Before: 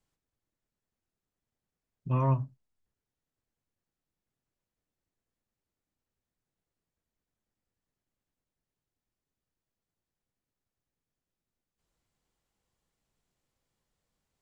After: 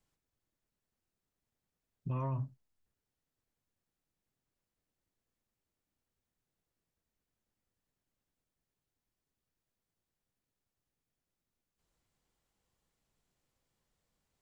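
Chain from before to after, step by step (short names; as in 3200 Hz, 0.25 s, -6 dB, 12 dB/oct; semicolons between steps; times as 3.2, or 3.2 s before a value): limiter -29.5 dBFS, peak gain reduction 12 dB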